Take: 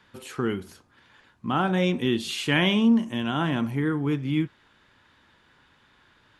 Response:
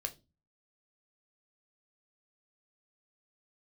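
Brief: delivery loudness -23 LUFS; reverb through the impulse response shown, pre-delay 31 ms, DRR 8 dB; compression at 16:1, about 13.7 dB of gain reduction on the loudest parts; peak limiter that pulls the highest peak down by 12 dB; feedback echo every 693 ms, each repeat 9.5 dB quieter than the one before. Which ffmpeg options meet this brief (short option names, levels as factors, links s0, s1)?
-filter_complex "[0:a]acompressor=threshold=0.0355:ratio=16,alimiter=level_in=2.11:limit=0.0631:level=0:latency=1,volume=0.473,aecho=1:1:693|1386|2079|2772:0.335|0.111|0.0365|0.012,asplit=2[s0][s1];[1:a]atrim=start_sample=2205,adelay=31[s2];[s1][s2]afir=irnorm=-1:irlink=0,volume=0.422[s3];[s0][s3]amix=inputs=2:normalize=0,volume=6.68"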